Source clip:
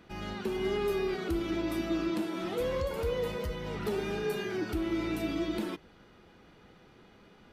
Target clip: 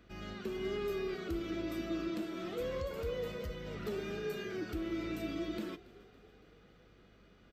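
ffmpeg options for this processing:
ffmpeg -i in.wav -filter_complex "[0:a]superequalizer=9b=0.447:16b=0.398,aeval=exprs='val(0)+0.001*(sin(2*PI*50*n/s)+sin(2*PI*2*50*n/s)/2+sin(2*PI*3*50*n/s)/3+sin(2*PI*4*50*n/s)/4+sin(2*PI*5*50*n/s)/5)':channel_layout=same,asplit=6[link_01][link_02][link_03][link_04][link_05][link_06];[link_02]adelay=280,afreqshift=32,volume=-21dB[link_07];[link_03]adelay=560,afreqshift=64,volume=-25dB[link_08];[link_04]adelay=840,afreqshift=96,volume=-29dB[link_09];[link_05]adelay=1120,afreqshift=128,volume=-33dB[link_10];[link_06]adelay=1400,afreqshift=160,volume=-37.1dB[link_11];[link_01][link_07][link_08][link_09][link_10][link_11]amix=inputs=6:normalize=0,volume=-6dB" out.wav

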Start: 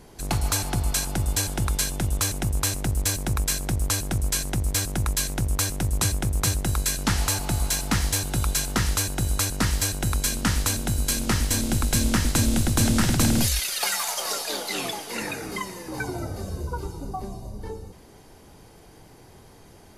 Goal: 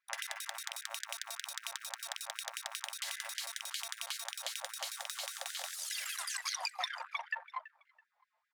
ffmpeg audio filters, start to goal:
ffmpeg -i in.wav -filter_complex "[0:a]anlmdn=39.8,highpass=100,lowpass=6800,highshelf=frequency=2000:gain=11,alimiter=limit=-14.5dB:level=0:latency=1:release=148,acompressor=threshold=-32dB:ratio=12,acrossover=split=260 3500:gain=0.0708 1 0.0891[link_01][link_02][link_03];[link_01][link_02][link_03]amix=inputs=3:normalize=0,aecho=1:1:773|1546:0.133|0.0347,asetrate=103194,aresample=44100,afftfilt=real='re*gte(b*sr/1024,500*pow(1500/500,0.5+0.5*sin(2*PI*5.1*pts/sr)))':imag='im*gte(b*sr/1024,500*pow(1500/500,0.5+0.5*sin(2*PI*5.1*pts/sr)))':win_size=1024:overlap=0.75,volume=2dB" out.wav

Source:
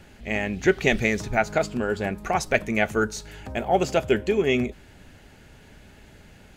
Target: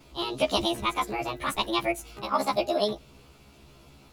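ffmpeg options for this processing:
ffmpeg -i in.wav -af "afftfilt=real='re':imag='-im':win_size=2048:overlap=0.75,asetrate=70119,aresample=44100" out.wav

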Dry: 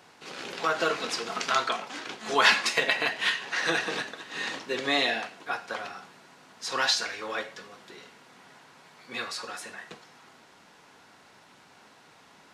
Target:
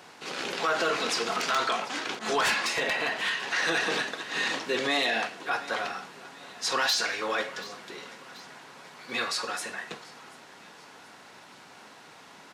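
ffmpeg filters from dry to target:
ffmpeg -i in.wav -filter_complex "[0:a]aeval=exprs='0.531*sin(PI/2*3.16*val(0)/0.531)':channel_layout=same,lowshelf=frequency=74:gain=-12,aecho=1:1:734|1468|2202:0.0708|0.0368|0.0191,alimiter=limit=-10.5dB:level=0:latency=1:release=21,asettb=1/sr,asplit=3[link_01][link_02][link_03];[link_01]atrim=end=2.194[link_04];[link_02]atrim=start=2.19:end=3.43,asetpts=PTS-STARTPTS,afade=type=in:duration=0.004:curve=qsin,afade=type=out:start_time=1.236:duration=0.004:curve=qsin,adynamicequalizer=threshold=0.0501:dfrequency=1700:dqfactor=0.7:tfrequency=1700:tqfactor=0.7:attack=5:release=100:ratio=0.375:range=2:mode=cutabove:tftype=highshelf[link_05];[link_03]atrim=start=3.426[link_06];[link_04][link_05]acrossfade=duration=0.004:curve1=hsin:curve2=qsin[link_07];[link_07][link_06]acrossfade=duration=0.004:curve1=qsin:curve2=hsin,volume=-8.5dB" out.wav

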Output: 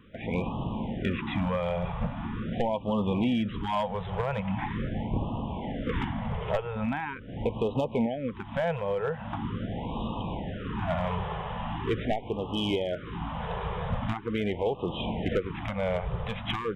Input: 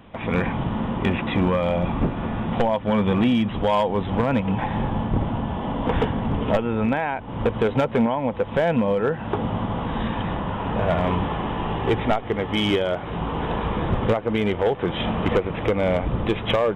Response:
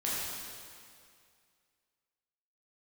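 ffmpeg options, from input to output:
-filter_complex "[0:a]asettb=1/sr,asplit=3[link_01][link_02][link_03];[link_01]atrim=end=4.404[link_04];[link_02]atrim=start=4.4:end=6.5,asetpts=PTS-STARTPTS,afade=type=in:duration=0.004:curve=qsin,afade=type=out:start_time=2.096:duration=0.004:curve=qsin,equalizer=frequency=2100:width_type=o:width=0.32:gain=6[link_05];[link_03]atrim=start=6.496[link_06];[link_04][link_05]acrossfade=duration=0.004:curve1=hsin:curve2=qsin[link_07];[link_07][link_06]acrossfade=duration=0.004:curve1=qsin:curve2=hsin,afftfilt=real='re*(1-between(b*sr/1024,260*pow(1800/260,0.5+0.5*sin(2*PI*0.42*pts/sr))/1.41,260*pow(1800/260,0.5+0.5*sin(2*PI*0.42*pts/sr))*1.41))':imag='im*(1-between(b*sr/1024,260*pow(1800/260,0.5+0.5*sin(2*PI*0.42*pts/sr))/1.41,260*pow(1800/260,0.5+0.5*sin(2*PI*0.42*pts/sr))*1.41))':win_size=1024:overlap=0.75,volume=-7dB"

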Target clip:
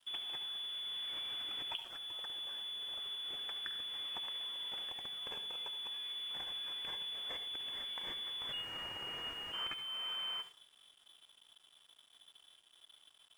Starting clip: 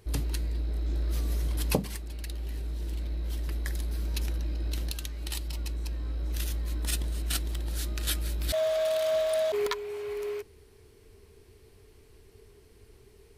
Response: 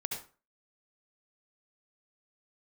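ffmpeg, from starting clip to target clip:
-filter_complex "[0:a]highshelf=frequency=2300:gain=10,acrossover=split=710|1500[link_01][link_02][link_03];[link_01]acompressor=threshold=-40dB:ratio=4[link_04];[link_02]acompressor=threshold=-51dB:ratio=4[link_05];[link_03]acompressor=threshold=-35dB:ratio=4[link_06];[link_04][link_05][link_06]amix=inputs=3:normalize=0,lowpass=frequency=3000:width_type=q:width=0.5098,lowpass=frequency=3000:width_type=q:width=0.6013,lowpass=frequency=3000:width_type=q:width=0.9,lowpass=frequency=3000:width_type=q:width=2.563,afreqshift=-3500,asplit=2[link_07][link_08];[1:a]atrim=start_sample=2205,highshelf=frequency=4300:gain=10.5[link_09];[link_08][link_09]afir=irnorm=-1:irlink=0,volume=-5dB[link_10];[link_07][link_10]amix=inputs=2:normalize=0,aeval=exprs='sgn(val(0))*max(abs(val(0))-0.00266,0)':channel_layout=same,volume=-8dB"

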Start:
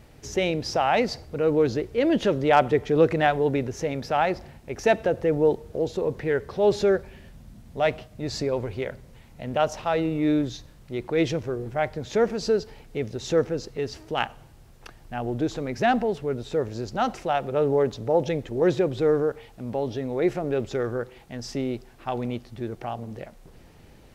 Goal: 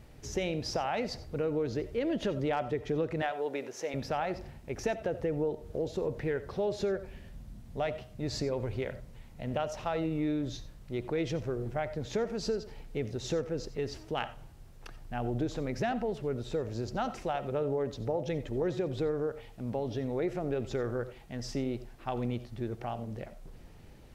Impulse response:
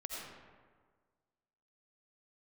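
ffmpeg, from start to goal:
-filter_complex "[0:a]asettb=1/sr,asplit=3[link_01][link_02][link_03];[link_01]atrim=end=3.224[link_04];[link_02]atrim=start=3.22:end=3.94,asetpts=PTS-STARTPTS,afade=type=in:duration=0.004:curve=qsin,afade=type=out:start_time=0.716:duration=0.004:curve=qsin,highpass=460[link_05];[link_03]atrim=start=3.936[link_06];[link_04][link_05]acrossfade=duration=0.004:curve1=hsin:curve2=qsin[link_07];[link_07][link_06]acrossfade=duration=0.004:curve1=qsin:curve2=hsin,acompressor=threshold=-24dB:ratio=6,asplit=2[link_08][link_09];[1:a]atrim=start_sample=2205,atrim=end_sample=4410,lowshelf=frequency=280:gain=10[link_10];[link_09][link_10]afir=irnorm=-1:irlink=0,volume=-4.5dB[link_11];[link_08][link_11]amix=inputs=2:normalize=0,volume=-7.5dB"

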